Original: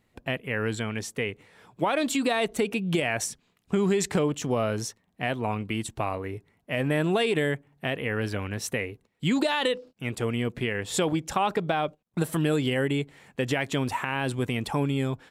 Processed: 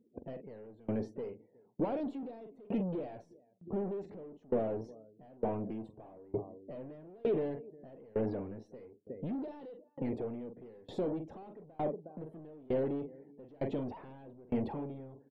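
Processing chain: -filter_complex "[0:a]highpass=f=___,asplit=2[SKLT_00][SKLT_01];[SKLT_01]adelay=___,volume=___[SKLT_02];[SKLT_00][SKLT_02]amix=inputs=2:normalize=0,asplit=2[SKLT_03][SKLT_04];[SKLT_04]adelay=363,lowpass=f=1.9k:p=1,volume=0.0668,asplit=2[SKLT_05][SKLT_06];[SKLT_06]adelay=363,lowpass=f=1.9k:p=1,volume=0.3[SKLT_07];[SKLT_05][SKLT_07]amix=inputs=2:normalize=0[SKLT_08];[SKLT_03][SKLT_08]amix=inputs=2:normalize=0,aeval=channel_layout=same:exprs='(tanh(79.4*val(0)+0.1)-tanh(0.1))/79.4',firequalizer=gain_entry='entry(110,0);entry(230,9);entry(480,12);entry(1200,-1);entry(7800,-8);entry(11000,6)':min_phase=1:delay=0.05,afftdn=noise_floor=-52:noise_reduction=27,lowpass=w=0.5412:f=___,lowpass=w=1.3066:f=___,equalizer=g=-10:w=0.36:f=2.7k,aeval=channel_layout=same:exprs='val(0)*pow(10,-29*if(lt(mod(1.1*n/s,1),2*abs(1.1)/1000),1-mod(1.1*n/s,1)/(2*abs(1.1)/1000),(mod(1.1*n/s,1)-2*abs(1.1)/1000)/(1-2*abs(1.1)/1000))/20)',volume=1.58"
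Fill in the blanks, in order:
62, 45, 0.251, 4.9k, 4.9k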